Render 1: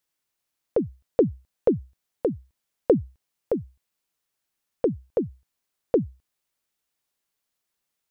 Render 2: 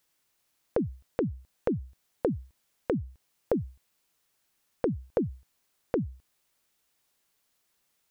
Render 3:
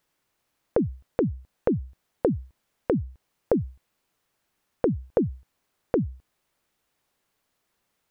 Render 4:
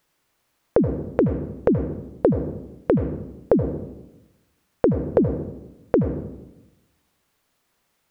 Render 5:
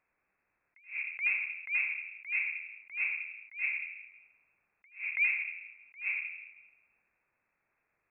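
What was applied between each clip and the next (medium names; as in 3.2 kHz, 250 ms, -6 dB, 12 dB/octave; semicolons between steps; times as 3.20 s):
compression 12:1, threshold -27 dBFS, peak gain reduction 14.5 dB; peak limiter -19 dBFS, peak gain reduction 8 dB; trim +7 dB
treble shelf 2.7 kHz -10 dB; trim +5 dB
reverberation RT60 0.95 s, pre-delay 73 ms, DRR 8 dB; trim +5 dB
frequency inversion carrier 2.6 kHz; attacks held to a fixed rise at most 200 dB/s; trim -6.5 dB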